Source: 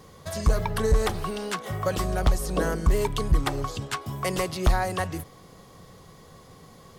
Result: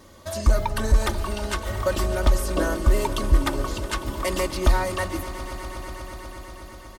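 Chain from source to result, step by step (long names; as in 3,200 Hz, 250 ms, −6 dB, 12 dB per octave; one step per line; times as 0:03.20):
comb filter 3.3 ms, depth 75%
on a send: echo that builds up and dies away 122 ms, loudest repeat 5, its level −17 dB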